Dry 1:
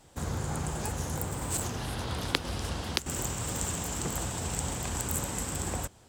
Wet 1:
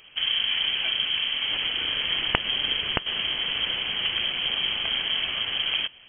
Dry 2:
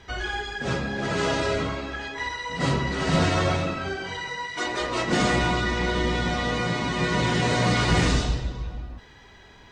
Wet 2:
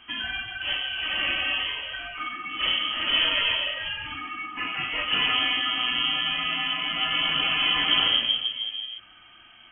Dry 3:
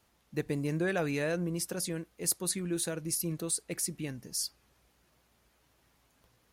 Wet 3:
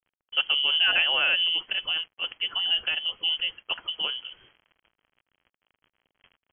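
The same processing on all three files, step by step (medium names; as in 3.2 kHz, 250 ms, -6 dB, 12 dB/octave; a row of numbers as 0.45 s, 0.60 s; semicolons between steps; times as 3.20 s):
word length cut 10-bit, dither none; frequency inversion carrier 3.2 kHz; normalise loudness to -24 LUFS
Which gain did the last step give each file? +7.0 dB, -2.0 dB, +8.0 dB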